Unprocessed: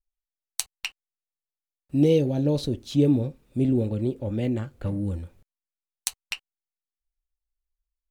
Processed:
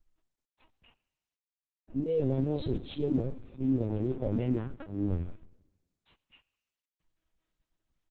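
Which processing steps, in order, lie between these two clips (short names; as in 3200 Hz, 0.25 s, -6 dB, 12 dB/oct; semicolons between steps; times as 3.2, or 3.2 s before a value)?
G.711 law mismatch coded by mu; tilt shelf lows +9.5 dB, about 1500 Hz, from 2.03 s lows +3 dB; auto swell 0.261 s; limiter -19 dBFS, peak gain reduction 10 dB; doubler 23 ms -5 dB; reverb RT60 1.0 s, pre-delay 60 ms, DRR 21 dB; LPC vocoder at 8 kHz pitch kept; gain -3 dB; Opus 12 kbps 48000 Hz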